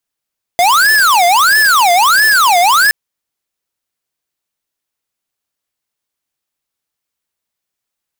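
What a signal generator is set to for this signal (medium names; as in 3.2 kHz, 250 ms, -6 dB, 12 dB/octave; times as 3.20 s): siren wail 692–1750 Hz 1.5 per s square -9 dBFS 2.32 s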